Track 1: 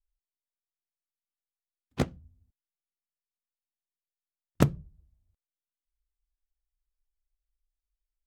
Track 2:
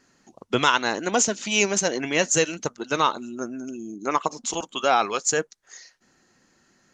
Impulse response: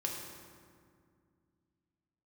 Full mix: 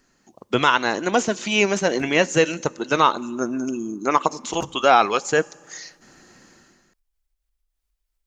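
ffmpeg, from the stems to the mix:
-filter_complex "[0:a]acompressor=mode=upward:threshold=-46dB:ratio=2.5,volume=-10.5dB[link_01];[1:a]dynaudnorm=framelen=120:gausssize=7:maxgain=13.5dB,volume=-2.5dB,asplit=3[link_02][link_03][link_04];[link_03]volume=-23dB[link_05];[link_04]apad=whole_len=364323[link_06];[link_01][link_06]sidechaincompress=threshold=-18dB:ratio=8:attack=16:release=1090[link_07];[2:a]atrim=start_sample=2205[link_08];[link_05][link_08]afir=irnorm=-1:irlink=0[link_09];[link_07][link_02][link_09]amix=inputs=3:normalize=0,acrossover=split=3300[link_10][link_11];[link_11]acompressor=threshold=-31dB:ratio=4:attack=1:release=60[link_12];[link_10][link_12]amix=inputs=2:normalize=0"

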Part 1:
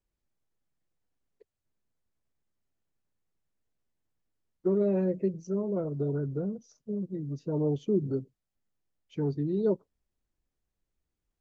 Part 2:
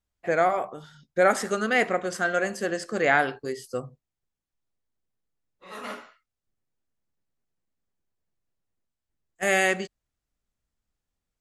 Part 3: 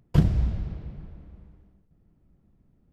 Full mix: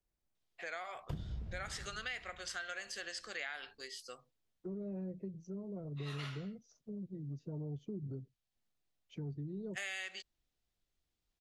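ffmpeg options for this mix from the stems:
ffmpeg -i stem1.wav -i stem2.wav -i stem3.wav -filter_complex "[0:a]equalizer=frequency=710:width_type=o:width=0.23:gain=5,acrossover=split=150[link_01][link_02];[link_02]acompressor=threshold=-49dB:ratio=2.5[link_03];[link_01][link_03]amix=inputs=2:normalize=0,volume=-3dB[link_04];[1:a]acompressor=threshold=-31dB:ratio=2,bandpass=frequency=3700:width_type=q:width=1.5:csg=0,adelay=350,volume=3dB[link_05];[2:a]adelay=950,volume=-12.5dB[link_06];[link_04][link_05][link_06]amix=inputs=3:normalize=0,acompressor=threshold=-38dB:ratio=6" out.wav

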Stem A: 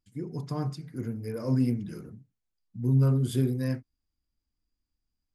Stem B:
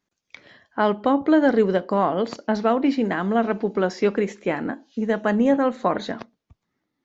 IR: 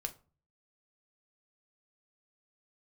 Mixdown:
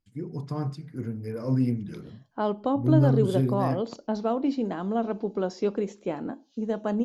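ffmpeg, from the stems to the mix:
-filter_complex "[0:a]highshelf=frequency=5900:gain=-10,volume=1dB[link_01];[1:a]equalizer=frequency=1900:width_type=o:width=0.9:gain=-13.5,adelay=1600,volume=-5.5dB[link_02];[link_01][link_02]amix=inputs=2:normalize=0"

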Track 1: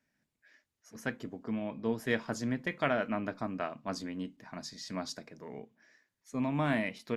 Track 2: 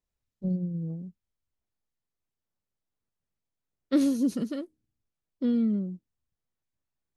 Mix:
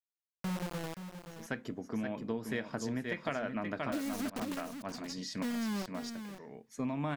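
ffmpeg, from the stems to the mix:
ffmpeg -i stem1.wav -i stem2.wav -filter_complex "[0:a]adelay=450,volume=2dB,asplit=2[link_01][link_02];[link_02]volume=-7dB[link_03];[1:a]adynamicequalizer=threshold=0.0141:dfrequency=280:dqfactor=2.1:tfrequency=280:tqfactor=2.1:attack=5:release=100:ratio=0.375:range=3:mode=cutabove:tftype=bell,acrusher=bits=4:mix=0:aa=0.000001,volume=-7dB,asplit=3[link_04][link_05][link_06];[link_05]volume=-11dB[link_07];[link_06]apad=whole_len=335766[link_08];[link_01][link_08]sidechaincompress=threshold=-56dB:ratio=4:attack=16:release=455[link_09];[link_03][link_07]amix=inputs=2:normalize=0,aecho=0:1:525:1[link_10];[link_09][link_04][link_10]amix=inputs=3:normalize=0,acompressor=threshold=-32dB:ratio=6" out.wav

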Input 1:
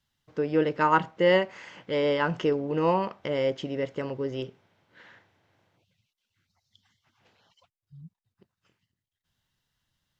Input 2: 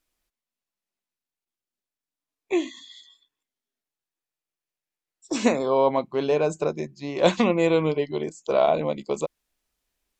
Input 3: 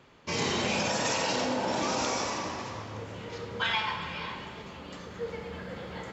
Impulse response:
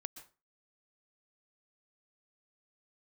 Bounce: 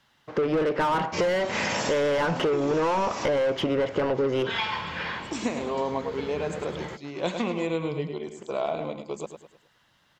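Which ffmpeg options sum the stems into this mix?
-filter_complex "[0:a]asplit=2[link_01][link_02];[link_02]highpass=frequency=720:poles=1,volume=30dB,asoftclip=type=tanh:threshold=-9dB[link_03];[link_01][link_03]amix=inputs=2:normalize=0,lowpass=frequency=1200:poles=1,volume=-6dB,volume=-0.5dB,asplit=2[link_04][link_05];[1:a]equalizer=frequency=550:width_type=o:width=0.45:gain=-4,volume=-6dB,asplit=2[link_06][link_07];[link_07]volume=-8dB[link_08];[2:a]adelay=850,volume=2dB[link_09];[link_05]apad=whole_len=307678[link_10];[link_09][link_10]sidechaincompress=threshold=-26dB:ratio=8:attack=16:release=203[link_11];[link_08]aecho=0:1:104|208|312|416|520:1|0.39|0.152|0.0593|0.0231[link_12];[link_04][link_06][link_11][link_12]amix=inputs=4:normalize=0,acompressor=threshold=-22dB:ratio=6"

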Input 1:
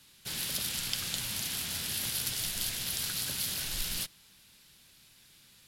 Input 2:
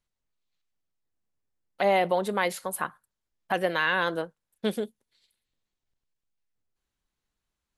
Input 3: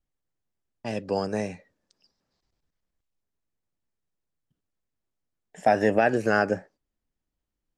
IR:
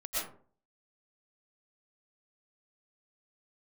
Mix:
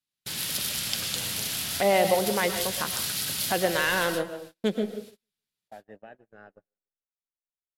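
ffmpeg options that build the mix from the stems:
-filter_complex "[0:a]highpass=78,volume=1.5dB,asplit=3[link_01][link_02][link_03];[link_02]volume=-7dB[link_04];[link_03]volume=-21.5dB[link_05];[1:a]equalizer=frequency=1100:width_type=o:width=1.1:gain=-5.5,adynamicsmooth=sensitivity=6.5:basefreq=1800,volume=1dB,asplit=4[link_06][link_07][link_08][link_09];[link_07]volume=-11dB[link_10];[link_08]volume=-15dB[link_11];[2:a]afwtdn=0.0112,acompressor=threshold=-28dB:ratio=2,adelay=50,volume=-18dB,asplit=3[link_12][link_13][link_14];[link_13]volume=-23dB[link_15];[link_14]volume=-16.5dB[link_16];[link_09]apad=whole_len=250463[link_17];[link_01][link_17]sidechaincompress=threshold=-31dB:ratio=8:attack=11:release=172[link_18];[3:a]atrim=start_sample=2205[link_19];[link_04][link_10][link_15]amix=inputs=3:normalize=0[link_20];[link_20][link_19]afir=irnorm=-1:irlink=0[link_21];[link_05][link_11][link_16]amix=inputs=3:normalize=0,aecho=0:1:150|300|450|600|750|900:1|0.4|0.16|0.064|0.0256|0.0102[link_22];[link_18][link_06][link_12][link_21][link_22]amix=inputs=5:normalize=0,agate=range=-34dB:threshold=-43dB:ratio=16:detection=peak"

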